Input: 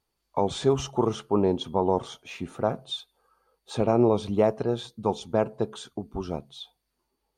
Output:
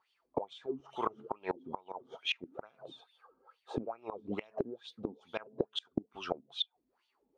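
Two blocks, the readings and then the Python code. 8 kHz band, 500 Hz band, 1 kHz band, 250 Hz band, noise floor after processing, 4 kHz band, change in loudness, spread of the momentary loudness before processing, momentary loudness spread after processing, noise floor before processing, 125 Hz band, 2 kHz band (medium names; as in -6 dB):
under -15 dB, -15.0 dB, -11.0 dB, -14.0 dB, -80 dBFS, -3.0 dB, -13.0 dB, 14 LU, 11 LU, -80 dBFS, -19.0 dB, -1.5 dB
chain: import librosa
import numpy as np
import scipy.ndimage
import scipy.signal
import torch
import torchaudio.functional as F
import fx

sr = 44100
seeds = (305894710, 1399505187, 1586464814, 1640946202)

y = fx.wah_lfo(x, sr, hz=2.3, low_hz=250.0, high_hz=3300.0, q=5.6)
y = fx.gate_flip(y, sr, shuts_db=-36.0, range_db=-26)
y = F.gain(torch.from_numpy(y), 16.5).numpy()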